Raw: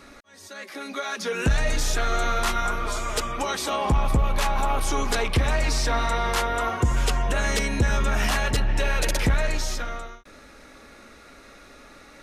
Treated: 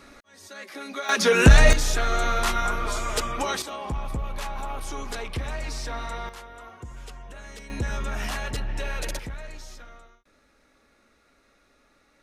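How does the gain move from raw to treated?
-2 dB
from 1.09 s +9 dB
from 1.73 s 0 dB
from 3.62 s -9 dB
from 6.29 s -18.5 dB
from 7.7 s -7 dB
from 9.19 s -15 dB

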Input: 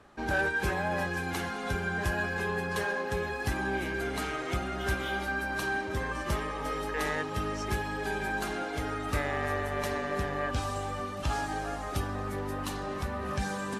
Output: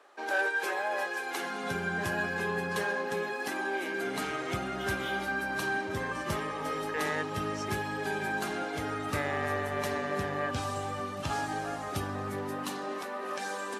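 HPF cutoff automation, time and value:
HPF 24 dB/oct
1.3 s 390 Hz
1.77 s 110 Hz
2.7 s 110 Hz
3.77 s 330 Hz
4.32 s 92 Hz
12.3 s 92 Hz
13.09 s 300 Hz

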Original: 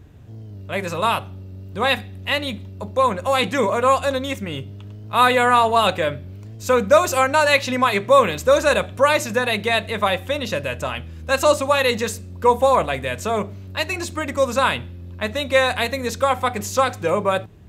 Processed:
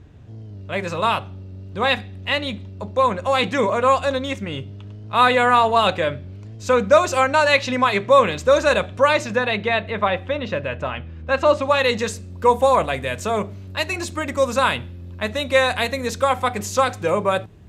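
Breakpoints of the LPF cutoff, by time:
9 s 6700 Hz
9.84 s 2700 Hz
11.48 s 2700 Hz
11.77 s 6000 Hz
12.48 s 12000 Hz

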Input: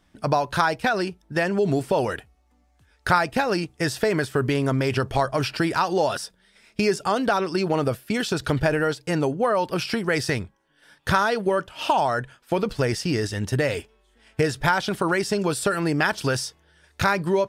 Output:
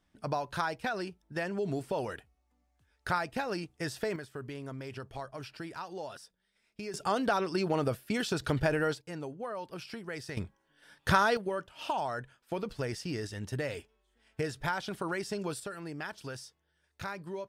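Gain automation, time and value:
-11.5 dB
from 4.16 s -19 dB
from 6.94 s -7 dB
from 9.01 s -17 dB
from 10.37 s -4.5 dB
from 11.37 s -12 dB
from 15.6 s -18 dB

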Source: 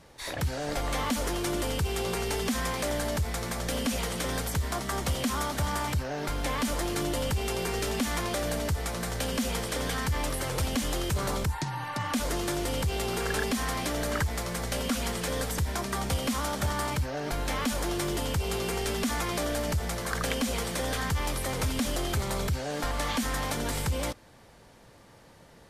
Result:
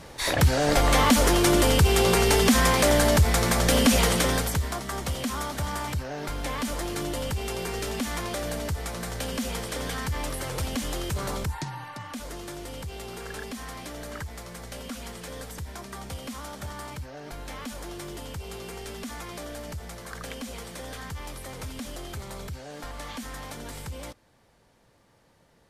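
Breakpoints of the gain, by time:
4.11 s +10 dB
4.81 s -1 dB
11.63 s -1 dB
12.07 s -8 dB

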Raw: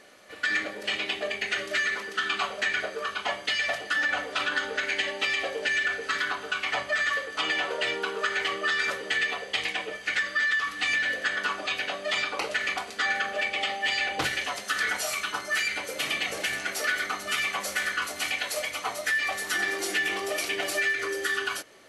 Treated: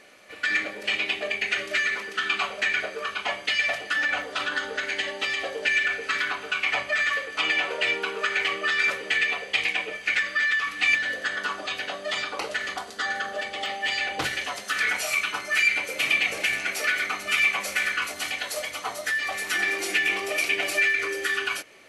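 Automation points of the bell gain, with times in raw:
bell 2400 Hz 0.38 oct
+6.5 dB
from 4.22 s -1 dB
from 5.65 s +8.5 dB
from 10.95 s -3 dB
from 12.66 s -9.5 dB
from 13.66 s +0.5 dB
from 14.72 s +10 dB
from 18.14 s -1.5 dB
from 19.34 s +10 dB

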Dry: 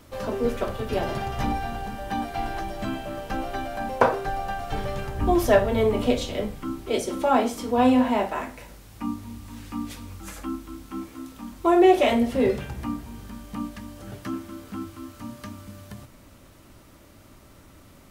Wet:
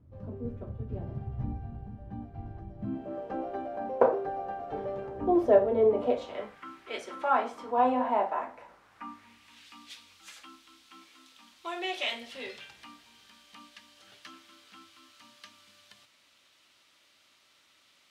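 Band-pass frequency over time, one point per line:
band-pass, Q 1.5
2.75 s 100 Hz
3.15 s 460 Hz
5.87 s 460 Hz
6.72 s 2000 Hz
7.9 s 840 Hz
8.57 s 840 Hz
9.68 s 3500 Hz

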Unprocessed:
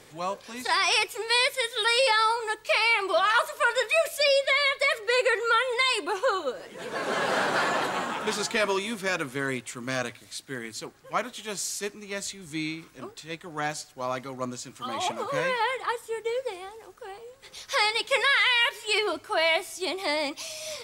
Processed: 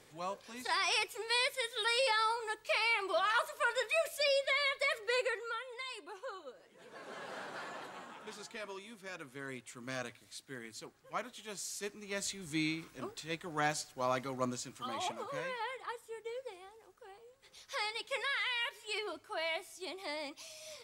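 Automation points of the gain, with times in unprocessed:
5.16 s -9 dB
5.63 s -19.5 dB
8.98 s -19.5 dB
9.88 s -11 dB
11.63 s -11 dB
12.37 s -3 dB
14.49 s -3 dB
15.48 s -13.5 dB

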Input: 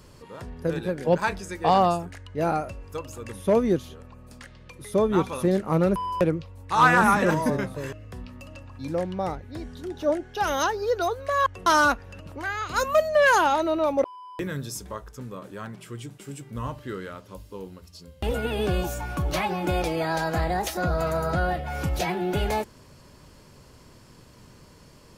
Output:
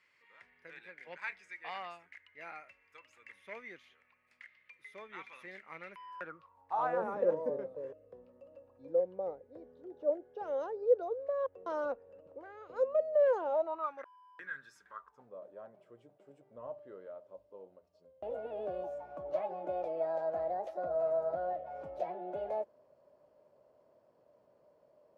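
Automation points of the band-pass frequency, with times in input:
band-pass, Q 7.2
5.97 s 2100 Hz
7.02 s 510 Hz
13.48 s 510 Hz
13.95 s 1600 Hz
14.89 s 1600 Hz
15.32 s 610 Hz

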